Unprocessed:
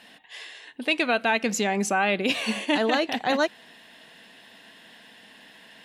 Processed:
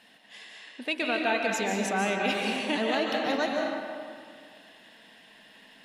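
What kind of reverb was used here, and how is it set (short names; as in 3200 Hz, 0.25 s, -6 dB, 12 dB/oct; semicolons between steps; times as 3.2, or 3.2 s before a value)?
digital reverb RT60 2.1 s, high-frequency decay 0.6×, pre-delay 0.105 s, DRR -0.5 dB; gain -6.5 dB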